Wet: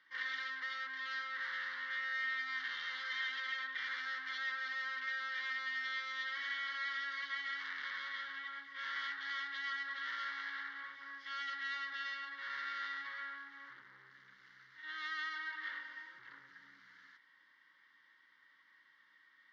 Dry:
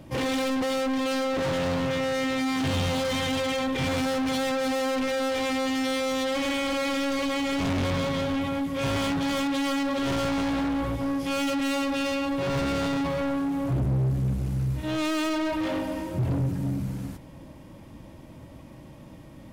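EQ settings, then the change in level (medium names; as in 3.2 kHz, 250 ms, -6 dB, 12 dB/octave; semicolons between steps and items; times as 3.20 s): ladder band-pass 2.1 kHz, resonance 60%; distance through air 61 m; static phaser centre 2.5 kHz, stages 6; +5.5 dB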